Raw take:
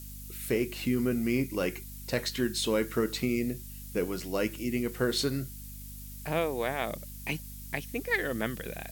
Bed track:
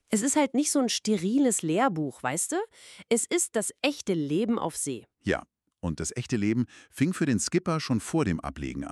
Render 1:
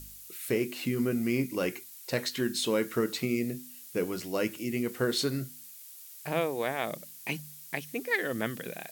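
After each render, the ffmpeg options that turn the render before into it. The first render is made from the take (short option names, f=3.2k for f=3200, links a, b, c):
-af "bandreject=f=50:t=h:w=4,bandreject=f=100:t=h:w=4,bandreject=f=150:t=h:w=4,bandreject=f=200:t=h:w=4,bandreject=f=250:t=h:w=4"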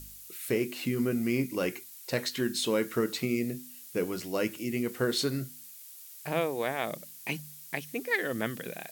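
-af anull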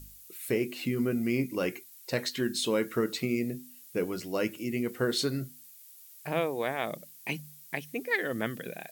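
-af "afftdn=nr=6:nf=-49"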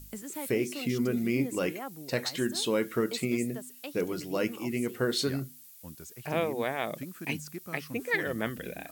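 -filter_complex "[1:a]volume=-16dB[a];[0:a][a]amix=inputs=2:normalize=0"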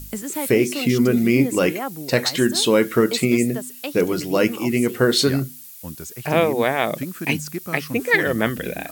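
-af "volume=11.5dB"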